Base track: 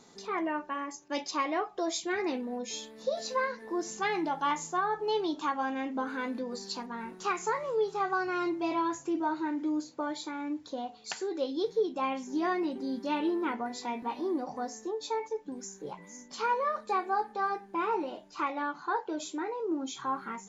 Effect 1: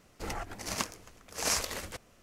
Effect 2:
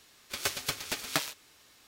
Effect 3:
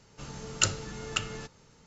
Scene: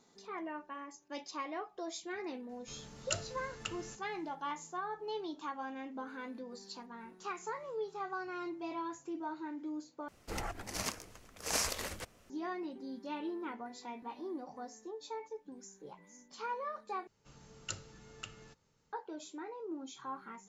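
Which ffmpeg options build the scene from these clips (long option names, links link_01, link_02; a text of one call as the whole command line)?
ffmpeg -i bed.wav -i cue0.wav -i cue1.wav -i cue2.wav -filter_complex "[3:a]asplit=2[link_01][link_02];[0:a]volume=-10dB[link_03];[1:a]alimiter=limit=-17.5dB:level=0:latency=1:release=93[link_04];[link_03]asplit=3[link_05][link_06][link_07];[link_05]atrim=end=10.084[link_08];[link_04]atrim=end=2.22,asetpts=PTS-STARTPTS,volume=-2dB[link_09];[link_06]atrim=start=12.296:end=17.074[link_10];[link_02]atrim=end=1.86,asetpts=PTS-STARTPTS,volume=-16dB[link_11];[link_07]atrim=start=18.926[link_12];[link_01]atrim=end=1.86,asetpts=PTS-STARTPTS,volume=-11dB,afade=type=in:duration=0.004:curve=hsin,afade=type=out:start_time=1.856:duration=0.004:curve=hsin,adelay=2490[link_13];[link_08][link_09]acrossfade=duration=0.004:curve1=hsin:curve2=hsin[link_14];[link_14][link_10]acrossfade=duration=0.004:curve1=hsin:curve2=hsin[link_15];[link_15][link_11]acrossfade=duration=0.004:curve1=hsin:curve2=hsin[link_16];[link_16][link_12]acrossfade=duration=0.004:curve1=hsin:curve2=hsin[link_17];[link_17][link_13]amix=inputs=2:normalize=0" out.wav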